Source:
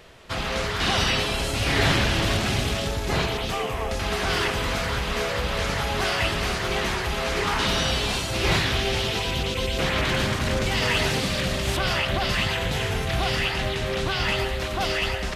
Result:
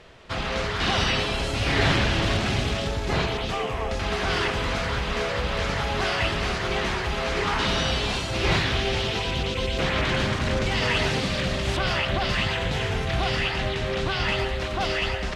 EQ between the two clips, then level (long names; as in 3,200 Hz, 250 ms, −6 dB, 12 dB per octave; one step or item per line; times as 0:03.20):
high-frequency loss of the air 62 metres
0.0 dB